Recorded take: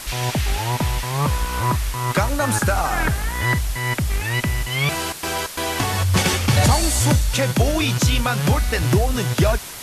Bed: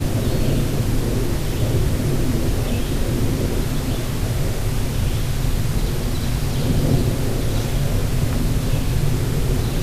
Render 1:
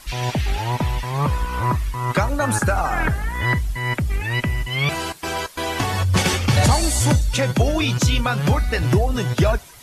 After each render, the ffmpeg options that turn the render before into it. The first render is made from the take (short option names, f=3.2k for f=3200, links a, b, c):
-af "afftdn=nr=12:nf=-32"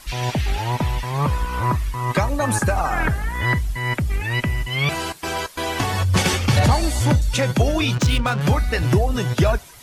-filter_complex "[0:a]asettb=1/sr,asplit=3[a][b][c];[a]atrim=end=2.014[d];[b]atrim=start=2.01:end=2.8,asetpts=PTS-STARTPTS,afade=t=in:d=0.004:c=qsin,afade=t=out:st=0.786:d=0.004:c=qsin,asuperstop=centerf=1400:order=4:qfactor=7.4[e];[c]atrim=start=2.796[f];[d][e]acrossfade=d=0.004:c1=hsin:c2=qsin[g];[g][f]acrossfade=d=0.004:c1=qsin:c2=hsin,asettb=1/sr,asplit=3[h][i][j];[h]atrim=end=6.594[k];[i]atrim=start=6.59:end=7.22,asetpts=PTS-STARTPTS,afade=t=in:d=0.004:c=qsin,afade=t=out:st=0.626:d=0.004:c=qsin,equalizer=f=8.3k:w=0.7:g=-8.5[l];[j]atrim=start=7.216[m];[k][l]acrossfade=d=0.004:c1=hsin:c2=qsin[n];[n][m]acrossfade=d=0.004:c1=qsin:c2=hsin,asettb=1/sr,asplit=3[o][p][q];[o]atrim=end=7.954[r];[p]atrim=start=7.95:end=8.41,asetpts=PTS-STARTPTS,afade=t=in:d=0.004:c=qsin,afade=t=out:st=0.456:d=0.004:c=qsin,adynamicsmooth=sensitivity=4:basefreq=1.1k[s];[q]atrim=start=8.406[t];[r][s]acrossfade=d=0.004:c1=hsin:c2=qsin[u];[u][t]acrossfade=d=0.004:c1=qsin:c2=hsin"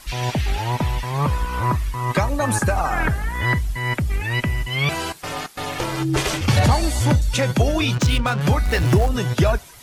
-filter_complex "[0:a]asplit=3[a][b][c];[a]afade=t=out:st=5.22:d=0.02[d];[b]aeval=exprs='val(0)*sin(2*PI*230*n/s)':c=same,afade=t=in:st=5.22:d=0.02,afade=t=out:st=6.4:d=0.02[e];[c]afade=t=in:st=6.4:d=0.02[f];[d][e][f]amix=inputs=3:normalize=0,asettb=1/sr,asplit=3[g][h][i];[g]atrim=end=8.654[j];[h]atrim=start=8.65:end=9.09,asetpts=PTS-STARTPTS,afade=t=in:d=0.004:c=qsin,afade=t=out:st=0.436:d=0.004:c=qsin,aeval=exprs='val(0)+0.5*0.0562*sgn(val(0))':c=same[k];[i]atrim=start=9.086[l];[j][k]acrossfade=d=0.004:c1=hsin:c2=qsin[m];[m][l]acrossfade=d=0.004:c1=qsin:c2=hsin"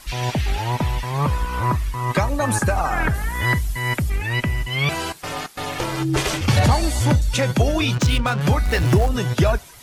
-filter_complex "[0:a]asettb=1/sr,asplit=3[a][b][c];[a]atrim=end=3.144[d];[b]atrim=start=3.14:end=4.1,asetpts=PTS-STARTPTS,afade=t=in:d=0.004:c=qsin,afade=t=out:st=0.956:d=0.004:c=qsin,highshelf=f=5.9k:g=8.5[e];[c]atrim=start=4.096[f];[d][e]acrossfade=d=0.004:c1=hsin:c2=qsin[g];[g][f]acrossfade=d=0.004:c1=qsin:c2=hsin"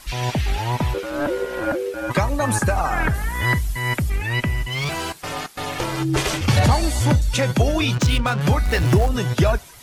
-filter_complex "[0:a]asplit=3[a][b][c];[a]afade=t=out:st=0.93:d=0.02[d];[b]aeval=exprs='val(0)*sin(2*PI*440*n/s)':c=same,afade=t=in:st=0.93:d=0.02,afade=t=out:st=2.09:d=0.02[e];[c]afade=t=in:st=2.09:d=0.02[f];[d][e][f]amix=inputs=3:normalize=0,asettb=1/sr,asplit=3[g][h][i];[g]atrim=end=4.694[j];[h]atrim=start=4.69:end=5.23,asetpts=PTS-STARTPTS,afade=t=in:d=0.004:c=qsin,afade=t=out:st=0.536:d=0.004:c=qsin,asoftclip=type=hard:threshold=-21.5dB[k];[i]atrim=start=5.226[l];[j][k]acrossfade=d=0.004:c1=hsin:c2=qsin[m];[m][l]acrossfade=d=0.004:c1=qsin:c2=hsin"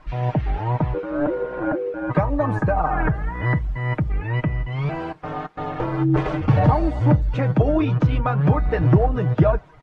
-af "lowpass=1.2k,aecho=1:1:6.5:0.55"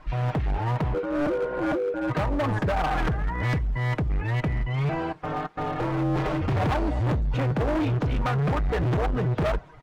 -af "volume=22dB,asoftclip=hard,volume=-22dB"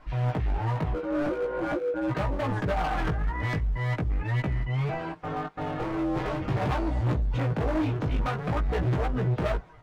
-af "flanger=delay=15.5:depth=3.8:speed=0.44"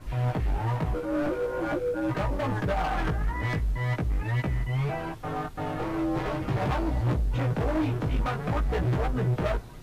-filter_complex "[1:a]volume=-25dB[a];[0:a][a]amix=inputs=2:normalize=0"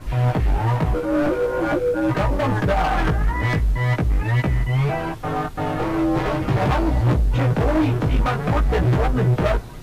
-af "volume=8dB"